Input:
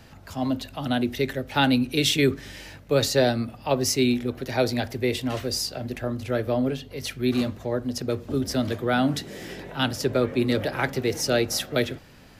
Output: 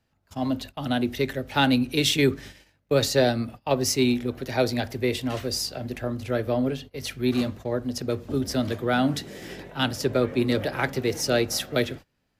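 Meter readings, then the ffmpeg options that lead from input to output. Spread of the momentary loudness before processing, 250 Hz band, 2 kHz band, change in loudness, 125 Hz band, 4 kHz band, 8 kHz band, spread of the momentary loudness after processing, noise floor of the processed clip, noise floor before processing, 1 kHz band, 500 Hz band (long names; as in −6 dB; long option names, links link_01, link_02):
9 LU, −0.5 dB, −0.5 dB, −0.5 dB, −0.5 dB, −0.5 dB, −0.5 dB, 10 LU, −72 dBFS, −48 dBFS, −0.5 dB, −0.5 dB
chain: -af "agate=range=-23dB:threshold=-38dB:ratio=16:detection=peak,aeval=exprs='0.422*(cos(1*acos(clip(val(0)/0.422,-1,1)))-cos(1*PI/2))+0.00596*(cos(7*acos(clip(val(0)/0.422,-1,1)))-cos(7*PI/2))':channel_layout=same"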